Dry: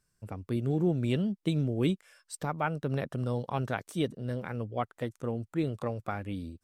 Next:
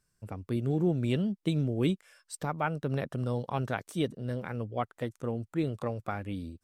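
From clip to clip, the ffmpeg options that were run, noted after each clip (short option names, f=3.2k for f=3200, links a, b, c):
-af anull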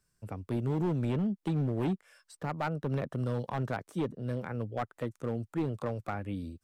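-filter_complex "[0:a]acrossover=split=180|1900[a][b][c];[c]acompressor=threshold=-54dB:ratio=6[d];[a][b][d]amix=inputs=3:normalize=0,asoftclip=type=hard:threshold=-25.5dB"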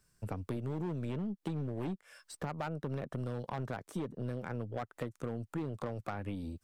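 -af "acompressor=threshold=-39dB:ratio=10,aeval=exprs='0.0398*(cos(1*acos(clip(val(0)/0.0398,-1,1)))-cos(1*PI/2))+0.00158*(cos(8*acos(clip(val(0)/0.0398,-1,1)))-cos(8*PI/2))':c=same,volume=4.5dB"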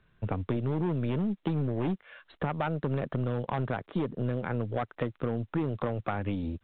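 -af "volume=7.5dB" -ar 8000 -c:a pcm_mulaw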